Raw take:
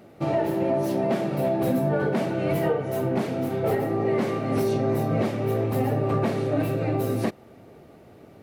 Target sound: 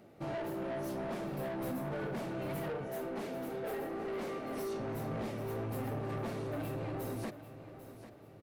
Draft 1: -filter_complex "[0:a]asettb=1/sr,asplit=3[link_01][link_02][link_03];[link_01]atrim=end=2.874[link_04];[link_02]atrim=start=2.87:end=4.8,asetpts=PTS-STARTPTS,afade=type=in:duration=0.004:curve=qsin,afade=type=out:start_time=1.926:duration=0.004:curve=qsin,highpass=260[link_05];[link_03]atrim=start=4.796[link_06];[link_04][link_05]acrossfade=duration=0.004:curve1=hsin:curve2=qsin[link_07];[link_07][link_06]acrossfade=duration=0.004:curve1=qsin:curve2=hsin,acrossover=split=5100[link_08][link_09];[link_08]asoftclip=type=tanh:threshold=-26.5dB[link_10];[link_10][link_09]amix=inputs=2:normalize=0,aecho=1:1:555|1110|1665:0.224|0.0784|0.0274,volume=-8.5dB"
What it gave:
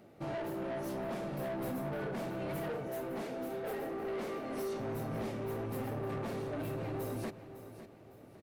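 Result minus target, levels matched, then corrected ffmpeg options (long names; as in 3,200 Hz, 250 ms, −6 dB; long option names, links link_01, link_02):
echo 239 ms early
-filter_complex "[0:a]asettb=1/sr,asplit=3[link_01][link_02][link_03];[link_01]atrim=end=2.874[link_04];[link_02]atrim=start=2.87:end=4.8,asetpts=PTS-STARTPTS,afade=type=in:duration=0.004:curve=qsin,afade=type=out:start_time=1.926:duration=0.004:curve=qsin,highpass=260[link_05];[link_03]atrim=start=4.796[link_06];[link_04][link_05]acrossfade=duration=0.004:curve1=hsin:curve2=qsin[link_07];[link_07][link_06]acrossfade=duration=0.004:curve1=qsin:curve2=hsin,acrossover=split=5100[link_08][link_09];[link_08]asoftclip=type=tanh:threshold=-26.5dB[link_10];[link_10][link_09]amix=inputs=2:normalize=0,aecho=1:1:794|1588|2382:0.224|0.0784|0.0274,volume=-8.5dB"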